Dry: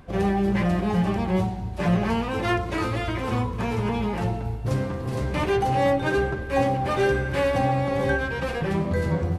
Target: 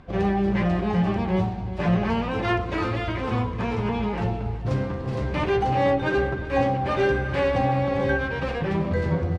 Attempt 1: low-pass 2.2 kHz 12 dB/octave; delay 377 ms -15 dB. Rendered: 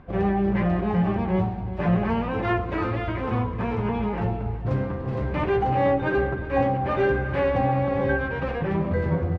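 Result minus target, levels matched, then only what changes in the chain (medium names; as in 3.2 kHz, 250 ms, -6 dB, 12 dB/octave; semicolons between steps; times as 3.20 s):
4 kHz band -6.5 dB
change: low-pass 4.7 kHz 12 dB/octave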